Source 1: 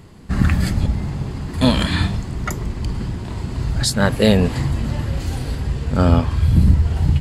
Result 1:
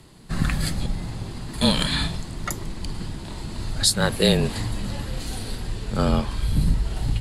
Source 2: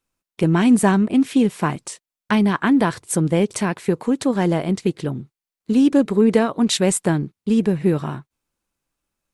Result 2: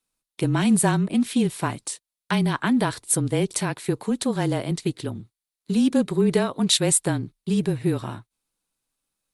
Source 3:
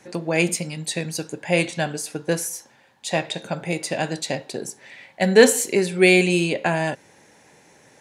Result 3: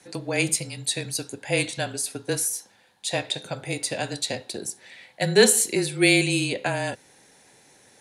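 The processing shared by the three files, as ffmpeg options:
-af "equalizer=f=100:t=o:w=0.67:g=-7,equalizer=f=4000:t=o:w=0.67:g=7,equalizer=f=10000:t=o:w=0.67:g=10,afreqshift=-27,volume=0.596"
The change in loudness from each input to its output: -5.5 LU, -4.0 LU, -3.0 LU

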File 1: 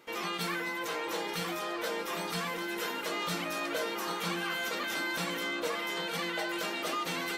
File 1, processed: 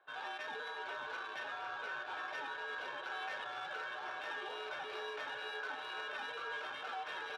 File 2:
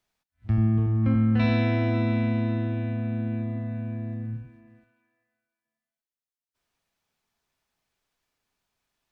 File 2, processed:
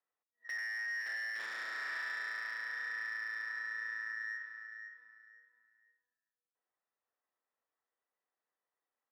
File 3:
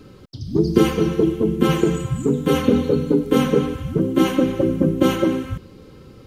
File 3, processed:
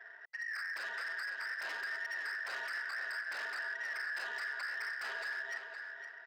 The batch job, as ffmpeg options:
-filter_complex "[0:a]afftfilt=real='real(if(between(b,1,1012),(2*floor((b-1)/92)+1)*92-b,b),0)':imag='imag(if(between(b,1,1012),(2*floor((b-1)/92)+1)*92-b,b),0)*if(between(b,1,1012),-1,1)':win_size=2048:overlap=0.75,acompressor=threshold=0.0398:ratio=2.5,aresample=16000,aresample=44100,adynamicsmooth=sensitivity=5.5:basefreq=1500,highpass=48,aeval=exprs='0.0473*(abs(mod(val(0)/0.0473+3,4)-2)-1)':c=same,acrossover=split=360 4700:gain=0.0794 1 0.251[s0][s1][s2];[s0][s1][s2]amix=inputs=3:normalize=0,alimiter=level_in=1.5:limit=0.0631:level=0:latency=1:release=65,volume=0.668,asplit=2[s3][s4];[s4]adelay=514,lowpass=f=4200:p=1,volume=0.447,asplit=2[s5][s6];[s6]adelay=514,lowpass=f=4200:p=1,volume=0.27,asplit=2[s7][s8];[s8]adelay=514,lowpass=f=4200:p=1,volume=0.27[s9];[s5][s7][s9]amix=inputs=3:normalize=0[s10];[s3][s10]amix=inputs=2:normalize=0,volume=0.501"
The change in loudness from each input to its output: -8.5 LU, -13.0 LU, -19.5 LU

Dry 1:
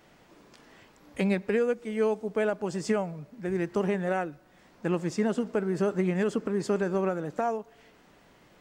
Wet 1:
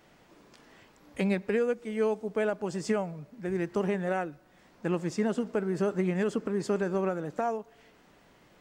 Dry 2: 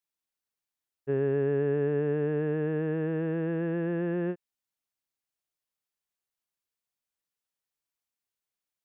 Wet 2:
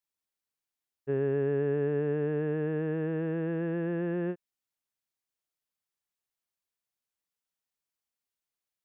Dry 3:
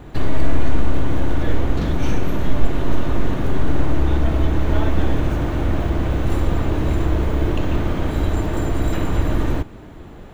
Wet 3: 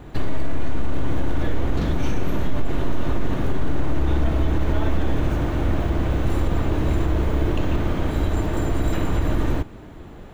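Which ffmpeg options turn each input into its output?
-af "alimiter=limit=0.355:level=0:latency=1:release=41,volume=0.841"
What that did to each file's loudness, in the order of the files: -1.5 LU, -1.5 LU, -2.5 LU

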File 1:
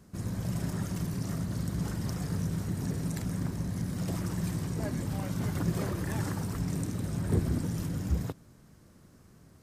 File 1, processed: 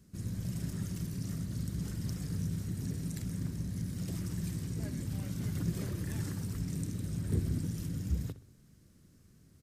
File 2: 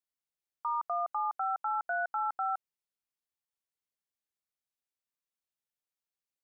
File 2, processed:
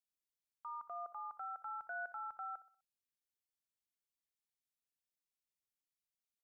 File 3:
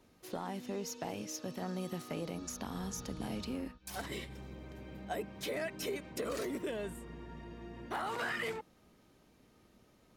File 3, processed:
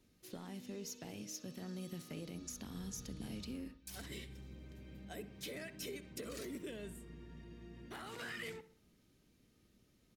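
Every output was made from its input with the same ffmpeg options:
-filter_complex "[0:a]equalizer=f=850:w=0.74:g=-12.5,asplit=2[s0][s1];[s1]adelay=63,lowpass=f=3500:p=1,volume=0.178,asplit=2[s2][s3];[s3]adelay=63,lowpass=f=3500:p=1,volume=0.45,asplit=2[s4][s5];[s5]adelay=63,lowpass=f=3500:p=1,volume=0.45,asplit=2[s6][s7];[s7]adelay=63,lowpass=f=3500:p=1,volume=0.45[s8];[s2][s4][s6][s8]amix=inputs=4:normalize=0[s9];[s0][s9]amix=inputs=2:normalize=0,volume=0.708"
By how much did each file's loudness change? -4.0 LU, -12.0 LU, -6.5 LU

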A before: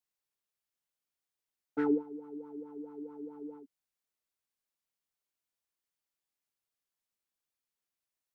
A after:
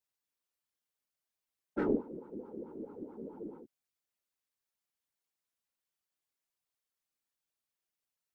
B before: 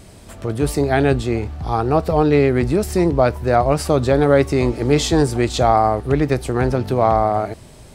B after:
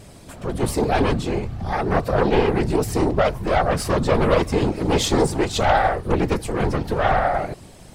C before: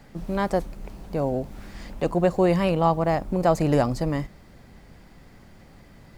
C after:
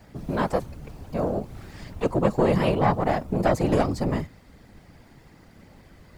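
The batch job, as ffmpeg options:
-af "aeval=exprs='0.891*(cos(1*acos(clip(val(0)/0.891,-1,1)))-cos(1*PI/2))+0.282*(cos(4*acos(clip(val(0)/0.891,-1,1)))-cos(4*PI/2))+0.141*(cos(5*acos(clip(val(0)/0.891,-1,1)))-cos(5*PI/2))':c=same,afftfilt=real='hypot(re,im)*cos(2*PI*random(0))':imag='hypot(re,im)*sin(2*PI*random(1))':win_size=512:overlap=0.75"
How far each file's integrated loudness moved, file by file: -2.0 LU, -3.5 LU, -1.0 LU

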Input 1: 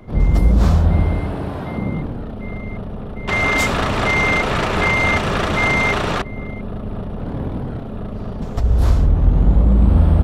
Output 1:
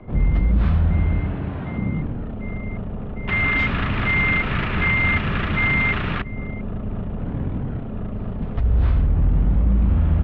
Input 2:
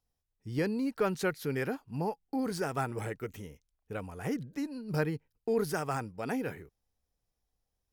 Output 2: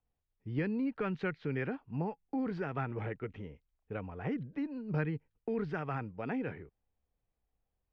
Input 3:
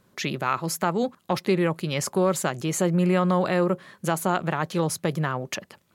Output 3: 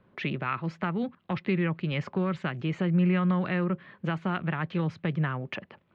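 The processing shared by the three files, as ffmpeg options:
-filter_complex "[0:a]acrossover=split=280|1300[s0][s1][s2];[s0]alimiter=limit=0.266:level=0:latency=1[s3];[s1]acompressor=threshold=0.0126:ratio=6[s4];[s2]lowpass=f=2800:w=0.5412,lowpass=f=2800:w=1.3066[s5];[s3][s4][s5]amix=inputs=3:normalize=0"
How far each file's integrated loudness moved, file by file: -4.0 LU, -3.0 LU, -4.0 LU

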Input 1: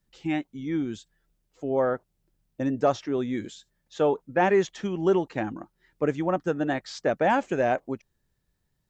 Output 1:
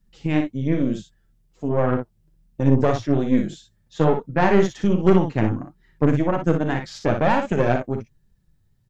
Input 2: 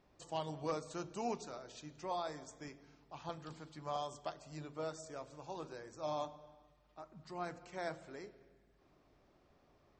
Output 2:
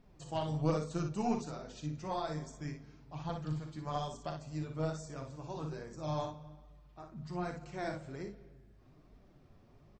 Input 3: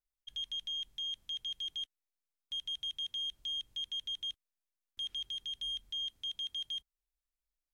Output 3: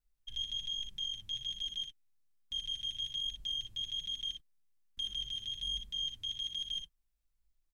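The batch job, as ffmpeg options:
-af "bass=f=250:g=13,treble=f=4000:g=0,flanger=delay=4:depth=5.9:regen=27:speed=1.2:shape=triangular,aeval=exprs='0.376*(cos(1*acos(clip(val(0)/0.376,-1,1)))-cos(1*PI/2))+0.0473*(cos(6*acos(clip(val(0)/0.376,-1,1)))-cos(6*PI/2))':c=same,aecho=1:1:39|59:0.282|0.447,volume=1.58"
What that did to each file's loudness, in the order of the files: +5.5 LU, +5.0 LU, +0.5 LU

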